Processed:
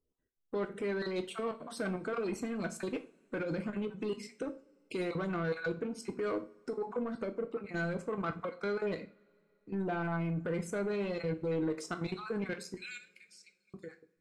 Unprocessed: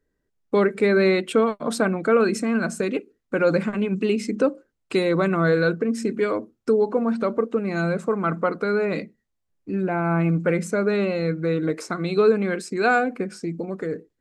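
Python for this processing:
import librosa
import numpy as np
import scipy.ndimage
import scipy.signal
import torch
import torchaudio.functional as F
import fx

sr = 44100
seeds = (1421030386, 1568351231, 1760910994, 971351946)

y = fx.spec_dropout(x, sr, seeds[0], share_pct=24)
y = fx.steep_highpass(y, sr, hz=2300.0, slope=36, at=(12.76, 13.74))
y = fx.level_steps(y, sr, step_db=13)
y = 10.0 ** (-22.5 / 20.0) * np.tanh(y / 10.0 ** (-22.5 / 20.0))
y = fx.rev_double_slope(y, sr, seeds[1], early_s=0.33, late_s=2.7, knee_db=-28, drr_db=7.0)
y = y * 10.0 ** (-6.0 / 20.0)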